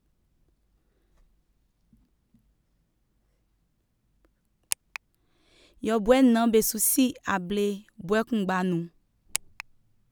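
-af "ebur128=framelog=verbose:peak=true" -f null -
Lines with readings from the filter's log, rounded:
Integrated loudness:
  I:         -25.2 LUFS
  Threshold: -37.2 LUFS
Loudness range:
  LRA:        16.5 LU
  Threshold: -47.7 LUFS
  LRA low:   -40.8 LUFS
  LRA high:  -24.3 LUFS
True peak:
  Peak:       -4.9 dBFS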